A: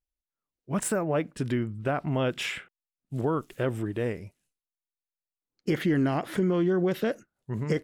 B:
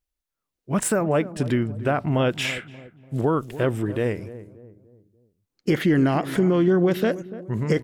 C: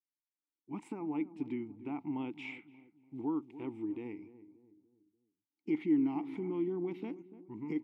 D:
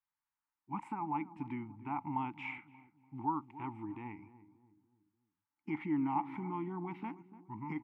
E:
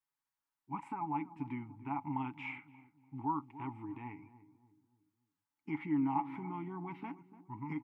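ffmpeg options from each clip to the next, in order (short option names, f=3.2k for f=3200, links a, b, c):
-filter_complex "[0:a]asplit=2[a][b];[b]adelay=291,lowpass=f=820:p=1,volume=-14dB,asplit=2[c][d];[d]adelay=291,lowpass=f=820:p=1,volume=0.44,asplit=2[e][f];[f]adelay=291,lowpass=f=820:p=1,volume=0.44,asplit=2[g][h];[h]adelay=291,lowpass=f=820:p=1,volume=0.44[i];[a][c][e][g][i]amix=inputs=5:normalize=0,volume=5.5dB"
-filter_complex "[0:a]asplit=3[a][b][c];[a]bandpass=f=300:t=q:w=8,volume=0dB[d];[b]bandpass=f=870:t=q:w=8,volume=-6dB[e];[c]bandpass=f=2.24k:t=q:w=8,volume=-9dB[f];[d][e][f]amix=inputs=3:normalize=0,volume=-4.5dB"
-af "firequalizer=gain_entry='entry(110,0);entry(510,-23);entry(850,7);entry(3600,-13)':delay=0.05:min_phase=1,volume=5.5dB"
-af "aecho=1:1:7.2:0.46,volume=-1.5dB"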